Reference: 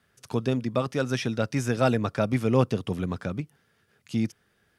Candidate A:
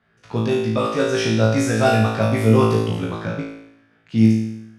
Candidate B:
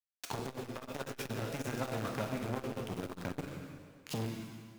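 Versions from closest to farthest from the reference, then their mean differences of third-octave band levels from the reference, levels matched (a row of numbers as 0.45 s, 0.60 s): A, B; 6.0 dB, 11.5 dB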